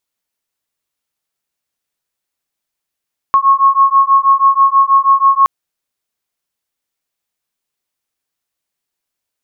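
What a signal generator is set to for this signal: beating tones 1090 Hz, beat 6.2 Hz, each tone -10 dBFS 2.12 s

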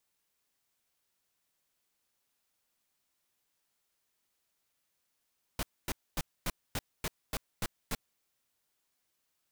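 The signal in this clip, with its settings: noise bursts pink, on 0.04 s, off 0.25 s, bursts 9, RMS -33 dBFS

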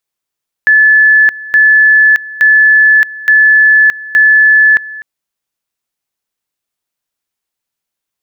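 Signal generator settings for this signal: two-level tone 1730 Hz -3 dBFS, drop 19.5 dB, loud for 0.62 s, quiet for 0.25 s, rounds 5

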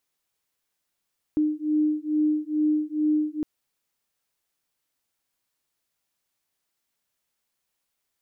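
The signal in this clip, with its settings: beating tones 303 Hz, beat 2.3 Hz, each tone -24 dBFS 2.06 s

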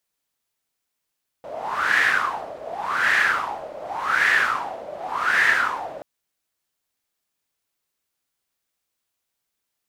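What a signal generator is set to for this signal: wind-like swept noise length 4.58 s, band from 590 Hz, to 1800 Hz, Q 7.4, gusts 4, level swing 17 dB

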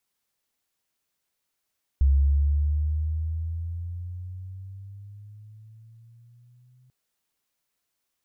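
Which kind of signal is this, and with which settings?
gliding synth tone sine, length 4.89 s, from 67.9 Hz, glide +11 st, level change -40 dB, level -15 dB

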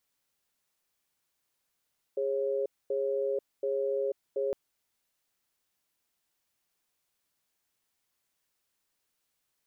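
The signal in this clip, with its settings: cadence 410 Hz, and 546 Hz, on 0.49 s, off 0.24 s, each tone -30 dBFS 2.36 s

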